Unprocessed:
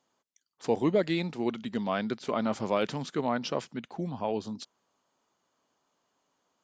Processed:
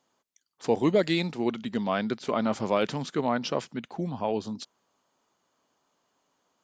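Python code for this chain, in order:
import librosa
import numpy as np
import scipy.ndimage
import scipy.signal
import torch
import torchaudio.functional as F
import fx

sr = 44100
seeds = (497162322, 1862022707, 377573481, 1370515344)

y = fx.high_shelf(x, sr, hz=4400.0, db=9.0, at=(0.83, 1.32))
y = y * 10.0 ** (2.5 / 20.0)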